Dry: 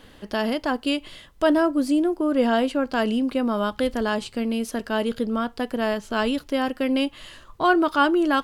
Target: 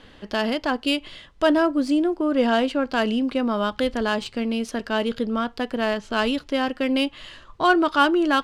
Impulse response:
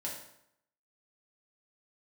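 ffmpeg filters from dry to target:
-af "highshelf=frequency=2200:gain=7,adynamicsmooth=sensitivity=1.5:basefreq=4500"

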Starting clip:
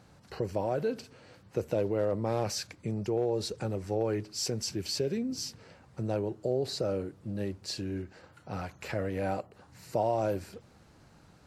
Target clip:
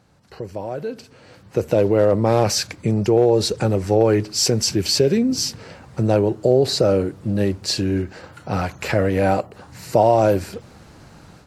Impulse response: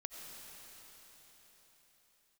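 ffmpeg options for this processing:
-af "dynaudnorm=framelen=950:gausssize=3:maxgain=15.5dB"

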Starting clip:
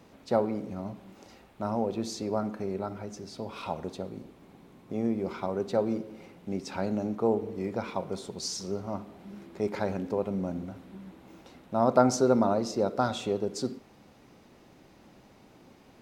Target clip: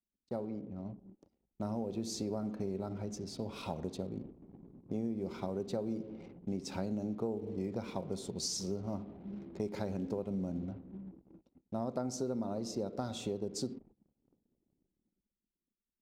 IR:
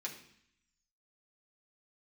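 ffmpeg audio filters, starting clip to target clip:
-af "dynaudnorm=framelen=110:gausssize=21:maxgain=9dB,anlmdn=0.1,equalizer=frequency=1400:width_type=o:width=2.6:gain=-11,agate=range=-19dB:threshold=-49dB:ratio=16:detection=peak,acompressor=threshold=-26dB:ratio=6,volume=-6.5dB"

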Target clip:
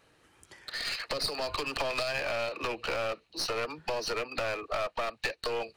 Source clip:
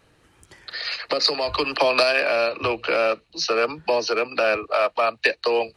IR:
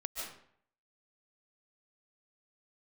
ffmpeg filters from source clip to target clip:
-af "acompressor=threshold=-23dB:ratio=4,lowshelf=frequency=220:gain=-7.5,aeval=exprs='clip(val(0),-1,0.0316)':channel_layout=same,volume=-3.5dB"

